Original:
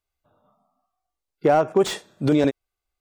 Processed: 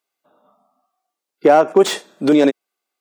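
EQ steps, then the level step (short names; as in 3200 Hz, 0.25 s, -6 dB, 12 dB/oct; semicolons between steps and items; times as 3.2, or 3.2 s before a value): HPF 210 Hz 24 dB/oct; +6.5 dB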